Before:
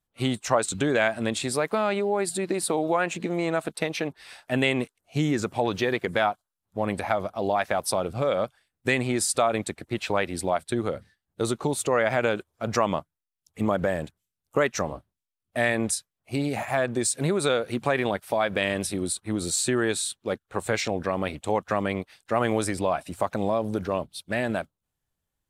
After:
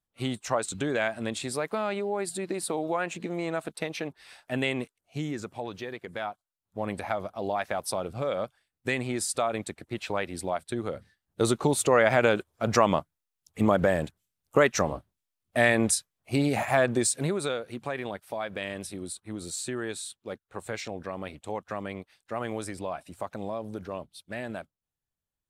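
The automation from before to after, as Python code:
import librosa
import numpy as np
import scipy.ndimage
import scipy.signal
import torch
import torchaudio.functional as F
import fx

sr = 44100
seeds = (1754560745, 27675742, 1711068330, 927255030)

y = fx.gain(x, sr, db=fx.line((4.74, -5.0), (5.99, -13.0), (6.79, -5.0), (10.85, -5.0), (11.42, 2.0), (16.91, 2.0), (17.65, -9.0)))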